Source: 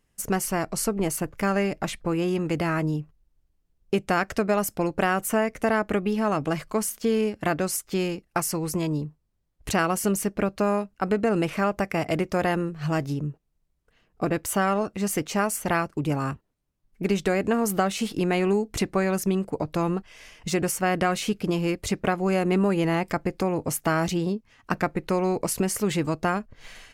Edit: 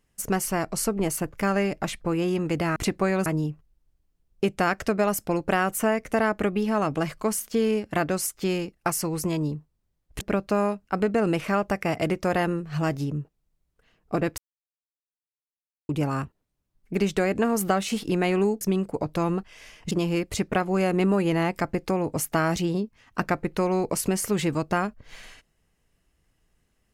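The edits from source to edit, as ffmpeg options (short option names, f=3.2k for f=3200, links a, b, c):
-filter_complex "[0:a]asplit=8[a][b][c][d][e][f][g][h];[a]atrim=end=2.762[i];[b]atrim=start=18.698:end=19.202[j];[c]atrim=start=2.758:end=9.712[k];[d]atrim=start=10.298:end=14.47,asetpts=PTS-STARTPTS,afade=t=out:st=4.168:d=0.004:c=hsin[l];[e]atrim=start=14.47:end=15.98,asetpts=PTS-STARTPTS,volume=0[m];[f]atrim=start=15.98:end=18.702,asetpts=PTS-STARTPTS,afade=t=in:d=0.004:c=hsin[n];[g]atrim=start=19.198:end=20.502[o];[h]atrim=start=21.428[p];[i][j]acrossfade=d=0.004:c1=hsin:c2=hsin[q];[q][k]acrossfade=d=0.004:c1=hsin:c2=hsin[r];[l][m][n]concat=n=3:v=0:a=1[s];[r][s]acrossfade=d=0.004:c1=hsin:c2=hsin[t];[t][o]acrossfade=d=0.004:c1=hsin:c2=hsin[u];[u][p]acrossfade=d=0.004:c1=hsin:c2=hsin"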